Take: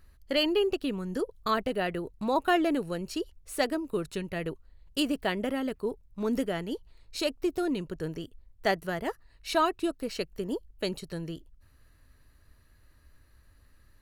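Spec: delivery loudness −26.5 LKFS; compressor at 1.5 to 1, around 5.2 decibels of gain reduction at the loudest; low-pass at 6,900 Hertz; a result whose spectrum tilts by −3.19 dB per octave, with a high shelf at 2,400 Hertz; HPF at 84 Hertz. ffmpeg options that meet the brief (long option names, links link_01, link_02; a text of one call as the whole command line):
ffmpeg -i in.wav -af "highpass=84,lowpass=6900,highshelf=frequency=2400:gain=4,acompressor=threshold=-34dB:ratio=1.5,volume=8dB" out.wav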